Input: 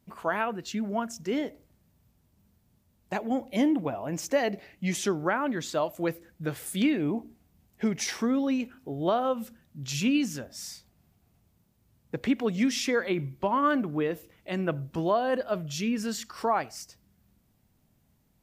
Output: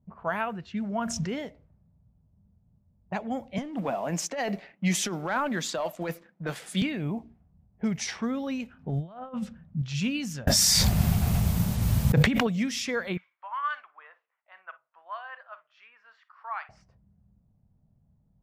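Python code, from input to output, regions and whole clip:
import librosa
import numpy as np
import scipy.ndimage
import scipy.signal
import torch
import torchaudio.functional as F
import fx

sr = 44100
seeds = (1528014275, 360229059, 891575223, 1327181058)

y = fx.chain(x, sr, fx.high_shelf(hz=5300.0, db=-6.0),
    fx.env_flatten(amount_pct=70), at=(0.95, 1.39))
y = fx.chain(y, sr, fx.highpass(hz=200.0, slope=24),
    fx.leveller(passes=1),
    fx.over_compress(threshold_db=-26.0, ratio=-1.0), at=(3.58, 6.82))
y = fx.chain(y, sr, fx.lowpass(hz=11000.0, slope=12),
    fx.peak_eq(hz=180.0, db=9.0, octaves=0.49),
    fx.over_compress(threshold_db=-32.0, ratio=-0.5), at=(8.79, 9.82))
y = fx.chain(y, sr, fx.hum_notches(base_hz=50, count=3),
    fx.env_flatten(amount_pct=100), at=(10.47, 12.47))
y = fx.chain(y, sr, fx.highpass(hz=1100.0, slope=24),
    fx.air_absorb(metres=150.0),
    fx.echo_multitap(ms=(42, 57), db=(-17.5, -15.5)), at=(13.17, 16.69))
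y = fx.env_lowpass(y, sr, base_hz=630.0, full_db=-24.5)
y = fx.curve_eq(y, sr, hz=(180.0, 310.0, 650.0), db=(0, -13, -5))
y = F.gain(torch.from_numpy(y), 4.0).numpy()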